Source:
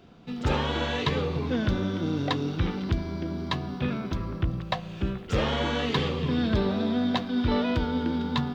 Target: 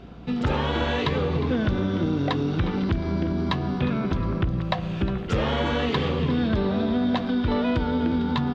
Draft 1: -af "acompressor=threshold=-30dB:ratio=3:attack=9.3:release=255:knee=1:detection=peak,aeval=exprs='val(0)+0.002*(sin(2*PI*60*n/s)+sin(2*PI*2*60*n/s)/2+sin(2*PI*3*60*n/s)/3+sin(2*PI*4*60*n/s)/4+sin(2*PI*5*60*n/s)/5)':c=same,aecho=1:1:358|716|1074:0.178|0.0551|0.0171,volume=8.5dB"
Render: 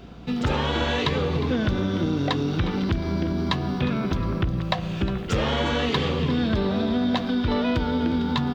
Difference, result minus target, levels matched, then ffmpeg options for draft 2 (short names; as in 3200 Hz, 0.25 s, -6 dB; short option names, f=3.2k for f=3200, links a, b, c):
4000 Hz band +3.0 dB
-af "acompressor=threshold=-30dB:ratio=3:attack=9.3:release=255:knee=1:detection=peak,lowpass=f=3k:p=1,aeval=exprs='val(0)+0.002*(sin(2*PI*60*n/s)+sin(2*PI*2*60*n/s)/2+sin(2*PI*3*60*n/s)/3+sin(2*PI*4*60*n/s)/4+sin(2*PI*5*60*n/s)/5)':c=same,aecho=1:1:358|716|1074:0.178|0.0551|0.0171,volume=8.5dB"